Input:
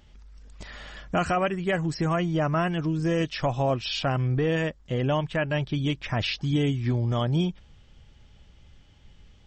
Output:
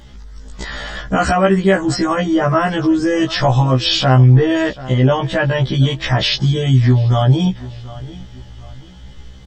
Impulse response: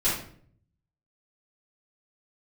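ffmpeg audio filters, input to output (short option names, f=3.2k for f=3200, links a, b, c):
-af "superequalizer=12b=0.501:16b=2,aecho=1:1:736|1472:0.0708|0.0248,alimiter=level_in=21dB:limit=-1dB:release=50:level=0:latency=1,afftfilt=real='re*1.73*eq(mod(b,3),0)':imag='im*1.73*eq(mod(b,3),0)':win_size=2048:overlap=0.75,volume=-3dB"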